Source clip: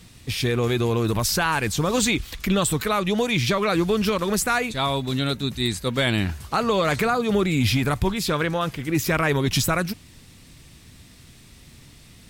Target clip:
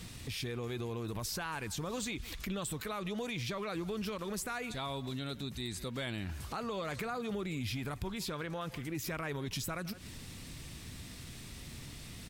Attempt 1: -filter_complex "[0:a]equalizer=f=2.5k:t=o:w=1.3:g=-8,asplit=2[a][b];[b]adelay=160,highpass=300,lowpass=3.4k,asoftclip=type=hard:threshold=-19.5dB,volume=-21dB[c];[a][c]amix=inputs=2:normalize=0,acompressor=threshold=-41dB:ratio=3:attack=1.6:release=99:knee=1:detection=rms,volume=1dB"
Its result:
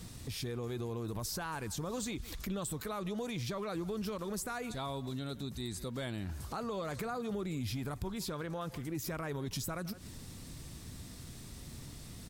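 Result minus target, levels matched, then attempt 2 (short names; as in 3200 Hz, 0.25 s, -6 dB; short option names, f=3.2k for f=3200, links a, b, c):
2000 Hz band -4.0 dB
-filter_complex "[0:a]asplit=2[a][b];[b]adelay=160,highpass=300,lowpass=3.4k,asoftclip=type=hard:threshold=-19.5dB,volume=-21dB[c];[a][c]amix=inputs=2:normalize=0,acompressor=threshold=-41dB:ratio=3:attack=1.6:release=99:knee=1:detection=rms,volume=1dB"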